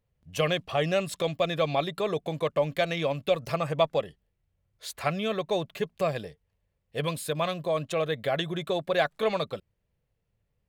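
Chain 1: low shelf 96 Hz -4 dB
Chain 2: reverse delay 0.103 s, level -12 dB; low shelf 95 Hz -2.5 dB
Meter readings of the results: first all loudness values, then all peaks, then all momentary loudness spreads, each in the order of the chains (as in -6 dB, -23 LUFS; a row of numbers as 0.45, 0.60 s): -29.0, -29.0 LUFS; -10.5, -10.5 dBFS; 8, 8 LU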